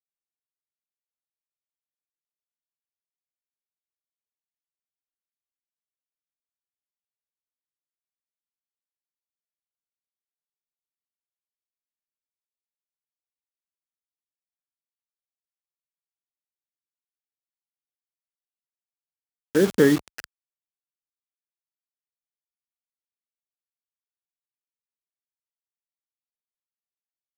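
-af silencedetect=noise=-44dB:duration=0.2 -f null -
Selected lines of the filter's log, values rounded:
silence_start: 0.00
silence_end: 19.55 | silence_duration: 19.55
silence_start: 20.24
silence_end: 27.37 | silence_duration: 7.13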